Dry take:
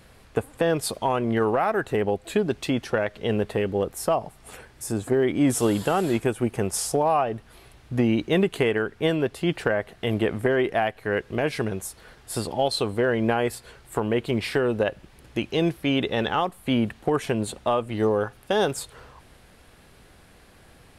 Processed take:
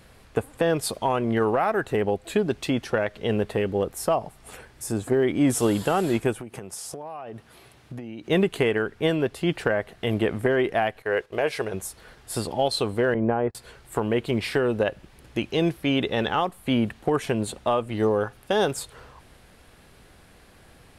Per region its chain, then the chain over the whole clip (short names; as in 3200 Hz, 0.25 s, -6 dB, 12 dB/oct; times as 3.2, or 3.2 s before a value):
6.4–8.3 HPF 99 Hz + compressor 16:1, threshold -32 dBFS
11.02–11.74 resonant low shelf 340 Hz -8 dB, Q 1.5 + gate -43 dBFS, range -10 dB
13.14–13.55 LPF 1100 Hz + gate -30 dBFS, range -31 dB
whole clip: dry